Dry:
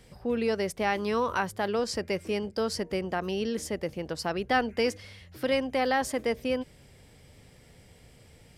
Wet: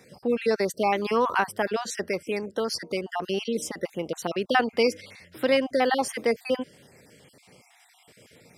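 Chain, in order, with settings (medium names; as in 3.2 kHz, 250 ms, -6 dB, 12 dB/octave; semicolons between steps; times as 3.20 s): random holes in the spectrogram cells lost 35%; high-pass 190 Hz 12 dB/octave; 2.09–3.27 s: harmonic-percussive split harmonic -4 dB; trim +5 dB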